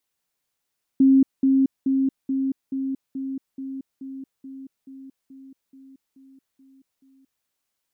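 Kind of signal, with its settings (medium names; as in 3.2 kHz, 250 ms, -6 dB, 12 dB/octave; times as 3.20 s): level ladder 268 Hz -11.5 dBFS, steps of -3 dB, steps 15, 0.23 s 0.20 s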